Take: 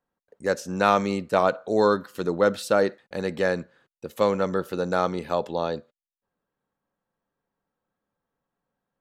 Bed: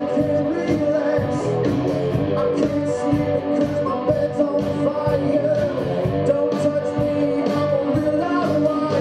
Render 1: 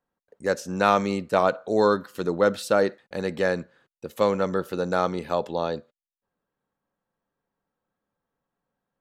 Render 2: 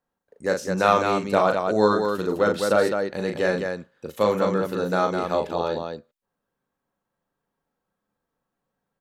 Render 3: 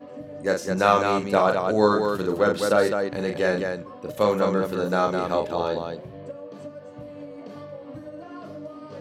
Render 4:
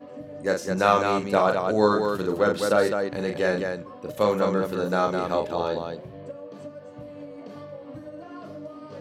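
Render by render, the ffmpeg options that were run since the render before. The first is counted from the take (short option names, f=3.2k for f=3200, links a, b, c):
-af anull
-af "aecho=1:1:37.9|207:0.562|0.562"
-filter_complex "[1:a]volume=-19.5dB[a];[0:a][a]amix=inputs=2:normalize=0"
-af "volume=-1dB"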